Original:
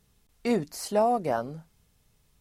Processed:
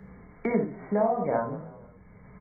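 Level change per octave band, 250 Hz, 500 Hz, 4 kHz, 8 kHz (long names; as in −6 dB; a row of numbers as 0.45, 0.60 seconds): +1.0 dB, 0.0 dB, below −30 dB, below −40 dB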